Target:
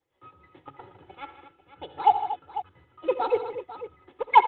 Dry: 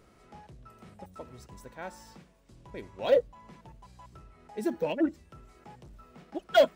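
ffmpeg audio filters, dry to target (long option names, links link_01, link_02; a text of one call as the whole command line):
ffmpeg -i in.wav -filter_complex "[0:a]highpass=frequency=61:width=0.5412,highpass=frequency=61:width=1.3066,agate=range=-33dB:threshold=-49dB:ratio=3:detection=peak,aecho=1:1:3.5:0.98,asplit=2[link_01][link_02];[link_02]acrusher=bits=4:mix=0:aa=0.000001,volume=-11dB[link_03];[link_01][link_03]amix=inputs=2:normalize=0,tremolo=f=4.7:d=0.63,asetrate=66591,aresample=44100,aecho=1:1:66|82|115|155|233|496:0.133|0.168|0.112|0.224|0.224|0.211,aresample=8000,aresample=44100" -ar 48000 -c:a libopus -b:a 32k out.opus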